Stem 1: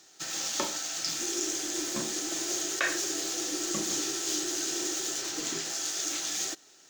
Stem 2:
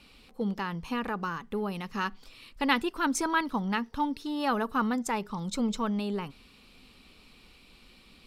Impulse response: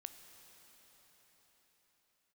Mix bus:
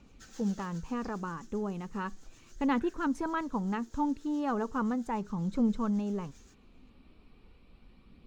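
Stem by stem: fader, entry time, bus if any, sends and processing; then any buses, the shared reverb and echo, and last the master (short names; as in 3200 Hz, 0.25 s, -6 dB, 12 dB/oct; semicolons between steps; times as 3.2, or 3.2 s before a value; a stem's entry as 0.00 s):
-16.0 dB, 0.00 s, no send, bell 1500 Hz +9.5 dB 0.45 oct; rotary speaker horn 7.5 Hz; auto duck -13 dB, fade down 1.50 s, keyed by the second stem
+1.5 dB, 0.00 s, no send, EQ curve 140 Hz 0 dB, 1100 Hz -7 dB, 6800 Hz -23 dB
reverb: off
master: phaser 0.36 Hz, delay 3.6 ms, feedback 23%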